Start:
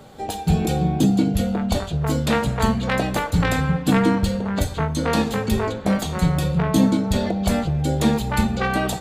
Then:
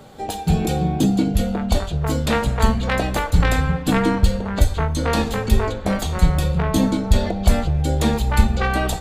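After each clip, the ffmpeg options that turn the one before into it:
-af "asubboost=boost=6.5:cutoff=60,volume=1dB"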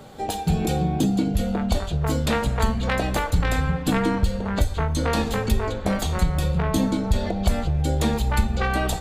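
-af "acompressor=threshold=-20dB:ratio=2"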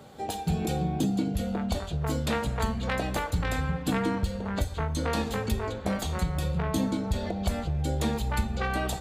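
-af "highpass=52,volume=-5.5dB"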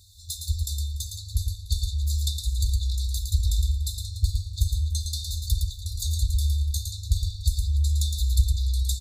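-filter_complex "[0:a]afftfilt=real='re*(1-between(b*sr/4096,100,3500))':imag='im*(1-between(b*sr/4096,100,3500))':win_size=4096:overlap=0.75,asplit=2[a][b];[b]aecho=0:1:112|291|391|420:0.562|0.112|0.133|0.133[c];[a][c]amix=inputs=2:normalize=0,volume=6.5dB"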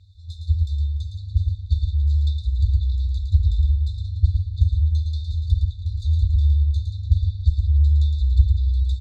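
-af "lowpass=f=2.5k:t=q:w=3.1,equalizer=f=87:t=o:w=1.5:g=14,volume=-5.5dB"

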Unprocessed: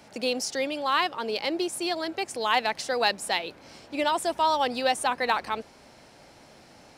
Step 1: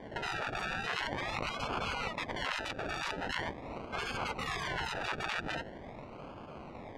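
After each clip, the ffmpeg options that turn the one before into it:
-af "acrusher=samples=33:mix=1:aa=0.000001:lfo=1:lforange=19.8:lforate=0.43,afftfilt=real='re*lt(hypot(re,im),0.0562)':imag='im*lt(hypot(re,im),0.0562)':win_size=1024:overlap=0.75,lowpass=2.5k,volume=6dB"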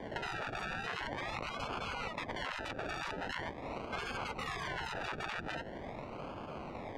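-filter_complex "[0:a]acrossover=split=370|2100[a][b][c];[a]acompressor=threshold=-49dB:ratio=4[d];[b]acompressor=threshold=-43dB:ratio=4[e];[c]acompressor=threshold=-50dB:ratio=4[f];[d][e][f]amix=inputs=3:normalize=0,volume=3.5dB"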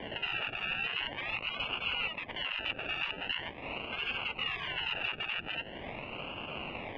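-af "alimiter=level_in=8.5dB:limit=-24dB:level=0:latency=1:release=385,volume=-8.5dB,lowpass=f=2.8k:t=q:w=11,volume=1dB"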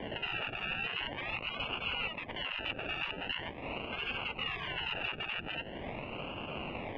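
-af "tiltshelf=f=970:g=3"

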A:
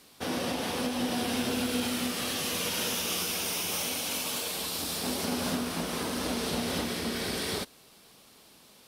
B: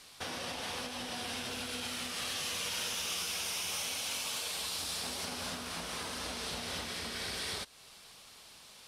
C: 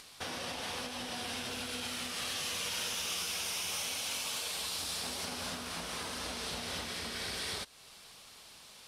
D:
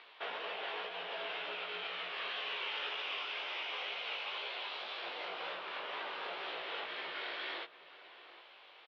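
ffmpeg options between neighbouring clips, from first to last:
-af "lowpass=10k,acompressor=threshold=-42dB:ratio=2,equalizer=f=270:w=0.58:g=-12,volume=4dB"
-af "acompressor=mode=upward:threshold=-51dB:ratio=2.5"
-filter_complex "[0:a]flanger=delay=16:depth=4.4:speed=2,asplit=2[a][b];[b]adelay=758,volume=-15dB,highshelf=f=4k:g=-17.1[c];[a][c]amix=inputs=2:normalize=0,highpass=f=490:t=q:w=0.5412,highpass=f=490:t=q:w=1.307,lowpass=f=3.4k:t=q:w=0.5176,lowpass=f=3.4k:t=q:w=0.7071,lowpass=f=3.4k:t=q:w=1.932,afreqshift=-68,volume=4dB"

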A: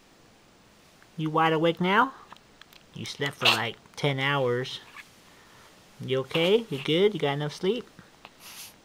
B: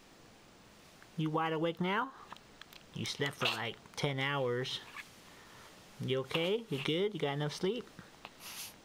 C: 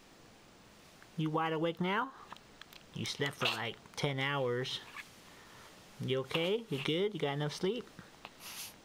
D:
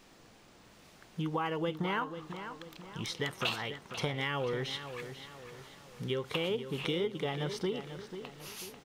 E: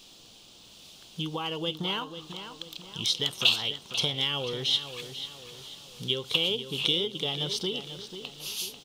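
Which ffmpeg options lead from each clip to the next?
-af "acompressor=threshold=-28dB:ratio=8,volume=-2dB"
-af anull
-filter_complex "[0:a]asplit=2[a][b];[b]adelay=492,lowpass=f=4.2k:p=1,volume=-10dB,asplit=2[c][d];[d]adelay=492,lowpass=f=4.2k:p=1,volume=0.46,asplit=2[e][f];[f]adelay=492,lowpass=f=4.2k:p=1,volume=0.46,asplit=2[g][h];[h]adelay=492,lowpass=f=4.2k:p=1,volume=0.46,asplit=2[i][j];[j]adelay=492,lowpass=f=4.2k:p=1,volume=0.46[k];[a][c][e][g][i][k]amix=inputs=6:normalize=0"
-af "highshelf=f=2.5k:t=q:w=3:g=9"

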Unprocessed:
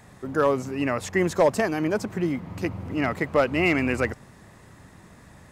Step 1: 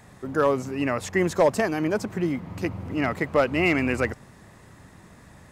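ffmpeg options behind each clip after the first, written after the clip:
-af anull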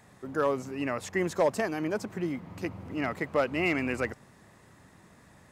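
-af "lowshelf=f=86:g=-8.5,volume=-5.5dB"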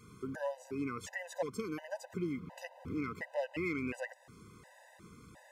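-af "acompressor=threshold=-41dB:ratio=2,afftfilt=real='re*gt(sin(2*PI*1.4*pts/sr)*(1-2*mod(floor(b*sr/1024/510),2)),0)':imag='im*gt(sin(2*PI*1.4*pts/sr)*(1-2*mod(floor(b*sr/1024/510),2)),0)':win_size=1024:overlap=0.75,volume=2.5dB"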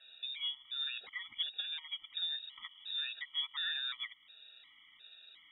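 -af "lowpass=f=3.3k:t=q:w=0.5098,lowpass=f=3.3k:t=q:w=0.6013,lowpass=f=3.3k:t=q:w=0.9,lowpass=f=3.3k:t=q:w=2.563,afreqshift=-3900,volume=-1.5dB"

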